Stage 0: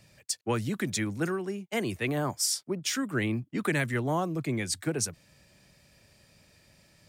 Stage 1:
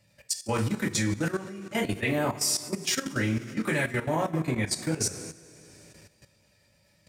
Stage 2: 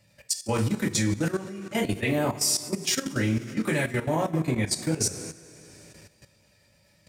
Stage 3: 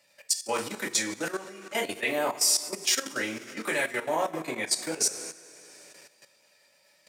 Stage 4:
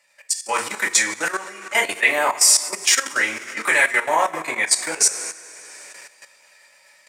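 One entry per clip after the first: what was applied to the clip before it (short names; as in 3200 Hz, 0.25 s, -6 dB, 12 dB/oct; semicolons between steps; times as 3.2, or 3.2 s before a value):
two-slope reverb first 0.28 s, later 2.6 s, from -18 dB, DRR -4.5 dB; level quantiser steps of 13 dB
dynamic EQ 1500 Hz, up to -4 dB, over -45 dBFS, Q 0.86; gain +2.5 dB
HPF 510 Hz 12 dB/oct; gain +1.5 dB
AGC gain up to 8 dB; graphic EQ 125/250/1000/2000/8000 Hz -4/-4/+8/+10/+9 dB; gain -5 dB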